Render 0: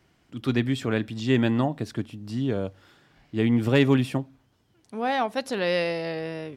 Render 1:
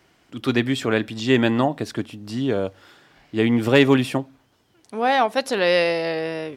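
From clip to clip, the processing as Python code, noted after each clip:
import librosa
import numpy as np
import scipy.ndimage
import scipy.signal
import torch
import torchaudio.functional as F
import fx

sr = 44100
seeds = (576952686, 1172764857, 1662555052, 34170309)

y = fx.bass_treble(x, sr, bass_db=-8, treble_db=0)
y = y * librosa.db_to_amplitude(7.0)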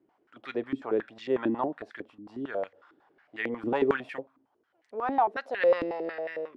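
y = fx.filter_held_bandpass(x, sr, hz=11.0, low_hz=300.0, high_hz=1900.0)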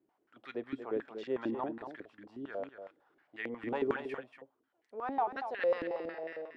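y = x + 10.0 ** (-9.0 / 20.0) * np.pad(x, (int(234 * sr / 1000.0), 0))[:len(x)]
y = y * librosa.db_to_amplitude(-7.5)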